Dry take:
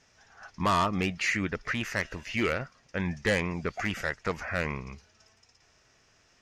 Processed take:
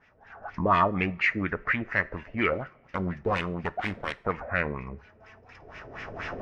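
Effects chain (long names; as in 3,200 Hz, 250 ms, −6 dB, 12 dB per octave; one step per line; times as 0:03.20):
0:02.53–0:04.18: phase distortion by the signal itself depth 0.76 ms
camcorder AGC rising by 19 dB per second
auto-filter low-pass sine 4.2 Hz 470–2,400 Hz
coupled-rooms reverb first 0.39 s, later 1.8 s, from −21 dB, DRR 16 dB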